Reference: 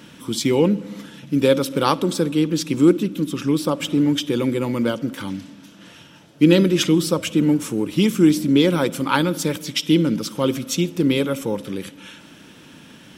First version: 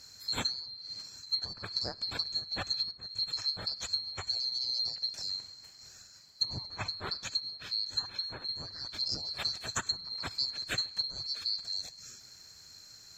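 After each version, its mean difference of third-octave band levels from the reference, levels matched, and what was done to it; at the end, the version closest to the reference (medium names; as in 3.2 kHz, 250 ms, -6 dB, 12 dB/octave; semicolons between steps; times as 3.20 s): 12.5 dB: split-band scrambler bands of 4 kHz; low-pass that closes with the level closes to 1.4 kHz, closed at -12.5 dBFS; peaking EQ 100 Hz +12 dB 1.4 oct; trim -8.5 dB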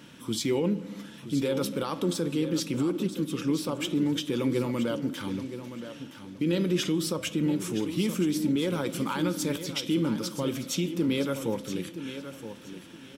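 4.5 dB: peak limiter -13 dBFS, peak gain reduction 11.5 dB; flange 0.68 Hz, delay 6.9 ms, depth 5.2 ms, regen +78%; feedback delay 971 ms, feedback 24%, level -11 dB; trim -1.5 dB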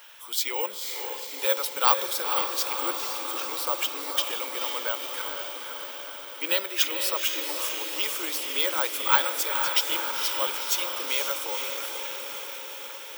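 17.5 dB: high-pass 670 Hz 24 dB/octave; on a send: echo that smears into a reverb 487 ms, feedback 69%, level -5 dB; on the sum: careless resampling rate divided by 2×, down none, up zero stuff; trim -3 dB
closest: second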